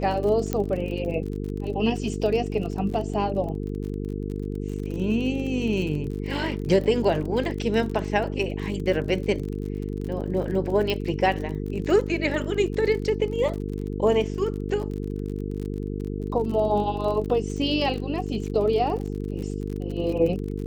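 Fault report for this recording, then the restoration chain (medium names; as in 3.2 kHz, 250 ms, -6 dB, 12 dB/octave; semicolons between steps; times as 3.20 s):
buzz 50 Hz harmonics 9 -30 dBFS
crackle 43 per s -32 dBFS
0.53 s: pop -11 dBFS
10.90 s: pop -14 dBFS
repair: de-click; de-hum 50 Hz, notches 9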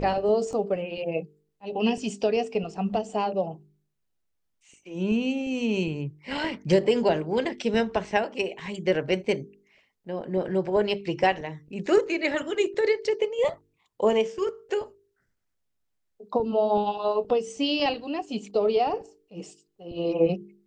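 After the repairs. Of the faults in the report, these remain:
0.53 s: pop
10.90 s: pop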